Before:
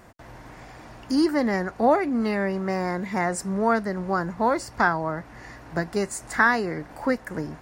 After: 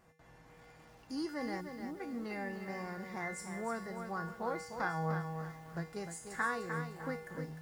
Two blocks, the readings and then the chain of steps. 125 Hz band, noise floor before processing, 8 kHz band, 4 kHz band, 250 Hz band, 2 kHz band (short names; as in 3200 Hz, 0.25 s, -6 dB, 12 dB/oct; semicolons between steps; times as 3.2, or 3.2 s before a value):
-9.0 dB, -46 dBFS, -13.0 dB, -13.5 dB, -16.0 dB, -14.5 dB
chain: resonator 160 Hz, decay 0.61 s, harmonics odd, mix 90%; spectral gain 1.61–2, 400–10000 Hz -23 dB; lo-fi delay 0.302 s, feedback 35%, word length 10-bit, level -7 dB; gain +1 dB